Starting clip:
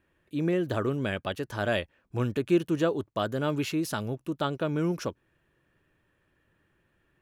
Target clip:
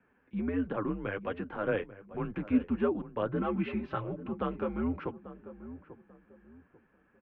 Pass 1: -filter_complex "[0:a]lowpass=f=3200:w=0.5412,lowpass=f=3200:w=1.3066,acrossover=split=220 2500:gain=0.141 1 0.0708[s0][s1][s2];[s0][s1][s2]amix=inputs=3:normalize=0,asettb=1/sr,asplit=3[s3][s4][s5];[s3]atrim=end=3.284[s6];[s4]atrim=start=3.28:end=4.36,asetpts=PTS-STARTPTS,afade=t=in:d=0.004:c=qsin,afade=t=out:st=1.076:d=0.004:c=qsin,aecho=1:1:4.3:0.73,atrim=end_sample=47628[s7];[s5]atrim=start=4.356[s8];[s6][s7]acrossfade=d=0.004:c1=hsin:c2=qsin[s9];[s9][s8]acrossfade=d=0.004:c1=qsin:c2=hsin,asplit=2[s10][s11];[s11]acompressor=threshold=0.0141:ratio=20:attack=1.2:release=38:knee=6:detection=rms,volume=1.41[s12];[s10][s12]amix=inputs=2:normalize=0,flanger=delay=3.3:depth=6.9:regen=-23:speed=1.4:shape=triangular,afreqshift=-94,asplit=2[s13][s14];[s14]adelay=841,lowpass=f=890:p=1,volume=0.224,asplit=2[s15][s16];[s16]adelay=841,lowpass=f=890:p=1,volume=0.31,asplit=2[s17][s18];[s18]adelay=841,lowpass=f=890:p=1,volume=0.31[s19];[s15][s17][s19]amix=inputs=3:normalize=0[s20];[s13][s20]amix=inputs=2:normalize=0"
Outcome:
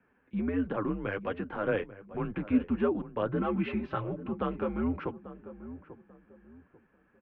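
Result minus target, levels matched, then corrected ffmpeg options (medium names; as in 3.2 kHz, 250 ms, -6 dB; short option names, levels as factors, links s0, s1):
compression: peak gain reduction -8.5 dB
-filter_complex "[0:a]lowpass=f=3200:w=0.5412,lowpass=f=3200:w=1.3066,acrossover=split=220 2500:gain=0.141 1 0.0708[s0][s1][s2];[s0][s1][s2]amix=inputs=3:normalize=0,asettb=1/sr,asplit=3[s3][s4][s5];[s3]atrim=end=3.284[s6];[s4]atrim=start=3.28:end=4.36,asetpts=PTS-STARTPTS,afade=t=in:d=0.004:c=qsin,afade=t=out:st=1.076:d=0.004:c=qsin,aecho=1:1:4.3:0.73,atrim=end_sample=47628[s7];[s5]atrim=start=4.356[s8];[s6][s7]acrossfade=d=0.004:c1=hsin:c2=qsin[s9];[s9][s8]acrossfade=d=0.004:c1=qsin:c2=hsin,asplit=2[s10][s11];[s11]acompressor=threshold=0.00501:ratio=20:attack=1.2:release=38:knee=6:detection=rms,volume=1.41[s12];[s10][s12]amix=inputs=2:normalize=0,flanger=delay=3.3:depth=6.9:regen=-23:speed=1.4:shape=triangular,afreqshift=-94,asplit=2[s13][s14];[s14]adelay=841,lowpass=f=890:p=1,volume=0.224,asplit=2[s15][s16];[s16]adelay=841,lowpass=f=890:p=1,volume=0.31,asplit=2[s17][s18];[s18]adelay=841,lowpass=f=890:p=1,volume=0.31[s19];[s15][s17][s19]amix=inputs=3:normalize=0[s20];[s13][s20]amix=inputs=2:normalize=0"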